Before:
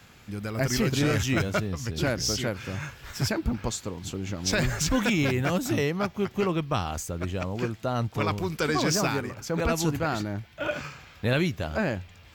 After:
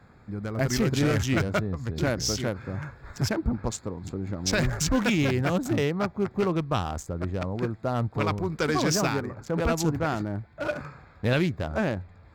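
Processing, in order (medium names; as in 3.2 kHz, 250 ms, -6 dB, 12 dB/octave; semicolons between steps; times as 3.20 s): local Wiener filter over 15 samples; trim +1 dB; AC-3 320 kbps 44.1 kHz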